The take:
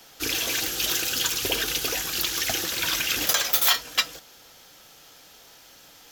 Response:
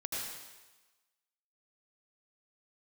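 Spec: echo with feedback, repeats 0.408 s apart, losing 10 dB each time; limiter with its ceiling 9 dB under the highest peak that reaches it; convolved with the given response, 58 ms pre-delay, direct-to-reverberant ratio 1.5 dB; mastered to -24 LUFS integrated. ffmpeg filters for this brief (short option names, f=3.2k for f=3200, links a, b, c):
-filter_complex "[0:a]alimiter=limit=-16dB:level=0:latency=1,aecho=1:1:408|816|1224|1632:0.316|0.101|0.0324|0.0104,asplit=2[a][b];[1:a]atrim=start_sample=2205,adelay=58[c];[b][c]afir=irnorm=-1:irlink=0,volume=-4.5dB[d];[a][d]amix=inputs=2:normalize=0,volume=-0.5dB"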